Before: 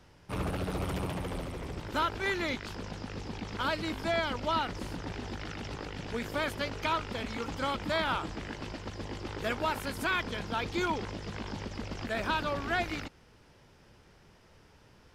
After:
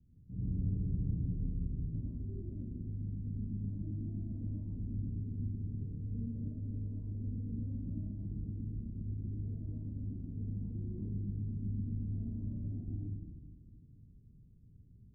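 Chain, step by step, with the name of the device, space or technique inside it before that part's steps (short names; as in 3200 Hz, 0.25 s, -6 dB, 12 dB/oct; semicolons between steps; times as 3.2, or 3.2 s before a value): club heard from the street (limiter -25.5 dBFS, peak gain reduction 7 dB; LPF 220 Hz 24 dB/oct; reverb RT60 1.5 s, pre-delay 61 ms, DRR -5 dB); gain -4.5 dB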